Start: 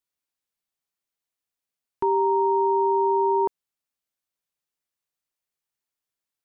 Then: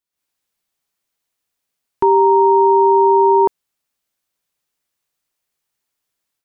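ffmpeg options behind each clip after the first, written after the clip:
-af "dynaudnorm=f=110:g=3:m=10dB"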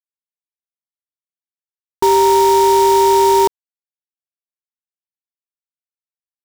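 -af "acrusher=bits=4:dc=4:mix=0:aa=0.000001"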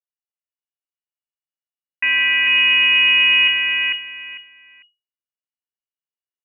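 -af "aeval=exprs='if(lt(val(0),0),0.251*val(0),val(0))':c=same,aecho=1:1:449|898|1347:0.668|0.14|0.0295,lowpass=f=2.5k:t=q:w=0.5098,lowpass=f=2.5k:t=q:w=0.6013,lowpass=f=2.5k:t=q:w=0.9,lowpass=f=2.5k:t=q:w=2.563,afreqshift=-2900,volume=-2.5dB"

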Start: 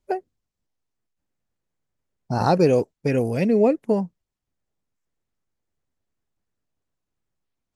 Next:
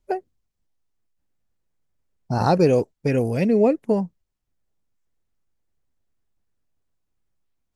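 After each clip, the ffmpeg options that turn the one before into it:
-af "lowshelf=f=61:g=8.5"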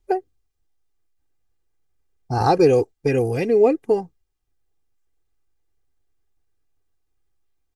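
-af "aecho=1:1:2.5:0.7"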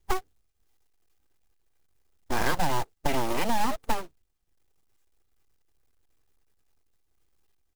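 -af "acompressor=threshold=-20dB:ratio=6,aeval=exprs='abs(val(0))':c=same,acrusher=bits=3:mode=log:mix=0:aa=0.000001"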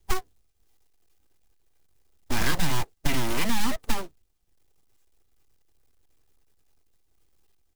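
-filter_complex "[0:a]acrossover=split=350|970|2200[a][b][c][d];[b]aeval=exprs='0.0126*(abs(mod(val(0)/0.0126+3,4)-2)-1)':c=same[e];[c]flanger=delay=5.9:depth=6.1:regen=50:speed=1.4:shape=triangular[f];[a][e][f][d]amix=inputs=4:normalize=0,volume=4.5dB"

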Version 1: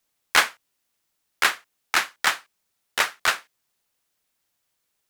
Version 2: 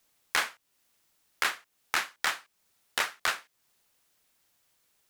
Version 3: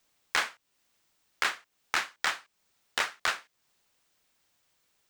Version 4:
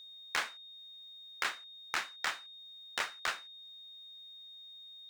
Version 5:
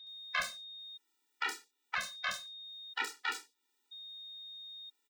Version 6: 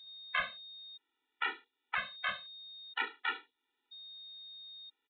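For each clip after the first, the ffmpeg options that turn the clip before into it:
-filter_complex "[0:a]asplit=2[a][b];[b]alimiter=limit=-9.5dB:level=0:latency=1:release=20,volume=3dB[c];[a][c]amix=inputs=2:normalize=0,acompressor=threshold=-31dB:ratio=2,volume=-3dB"
-af "equalizer=f=12k:w=2.1:g=-13.5"
-af "aeval=exprs='val(0)+0.00708*sin(2*PI*3700*n/s)':c=same,volume=-6dB"
-filter_complex "[0:a]acrossover=split=590|4400[a][b][c];[a]adelay=40[d];[c]adelay=70[e];[d][b][e]amix=inputs=3:normalize=0,afftfilt=real='re*gt(sin(2*PI*0.51*pts/sr)*(1-2*mod(floor(b*sr/1024/250),2)),0)':imag='im*gt(sin(2*PI*0.51*pts/sr)*(1-2*mod(floor(b*sr/1024/250),2)),0)':win_size=1024:overlap=0.75,volume=3.5dB"
-af "aresample=8000,aresample=44100,volume=1dB"

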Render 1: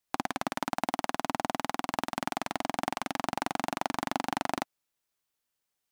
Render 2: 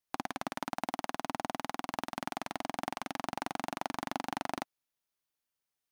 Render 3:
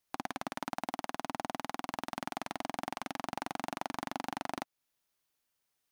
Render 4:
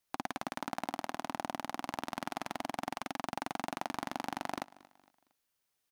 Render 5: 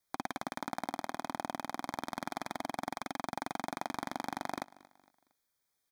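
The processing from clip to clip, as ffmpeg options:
-af "bandreject=f=7.6k:w=11,volume=-5dB"
-af "alimiter=level_in=0.5dB:limit=-24dB:level=0:latency=1:release=281,volume=-0.5dB,volume=6dB"
-af "aecho=1:1:230|460|690:0.0891|0.0348|0.0136"
-af "asuperstop=centerf=2800:order=20:qfactor=4.6"

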